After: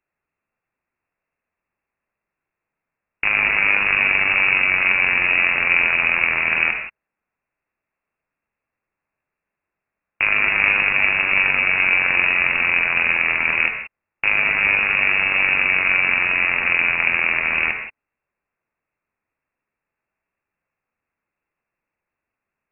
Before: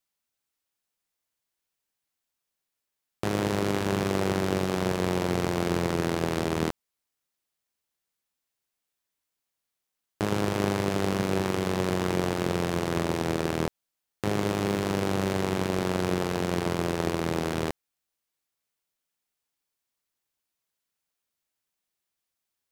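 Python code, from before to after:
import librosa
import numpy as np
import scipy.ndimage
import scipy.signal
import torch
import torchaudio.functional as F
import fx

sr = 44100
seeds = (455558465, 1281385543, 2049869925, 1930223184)

y = fx.rev_gated(x, sr, seeds[0], gate_ms=200, shape='flat', drr_db=4.5)
y = fx.freq_invert(y, sr, carrier_hz=2700)
y = F.gain(torch.from_numpy(y), 8.0).numpy()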